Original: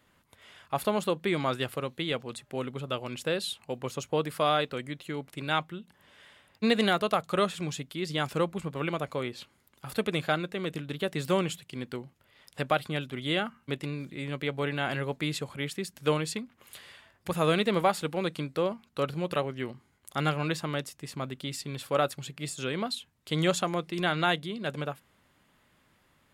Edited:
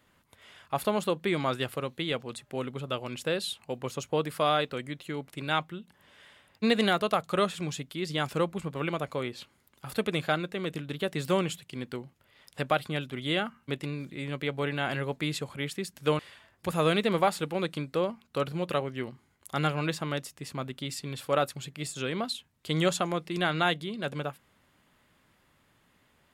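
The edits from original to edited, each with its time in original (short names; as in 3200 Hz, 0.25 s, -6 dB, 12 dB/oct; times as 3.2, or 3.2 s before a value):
16.19–16.81 cut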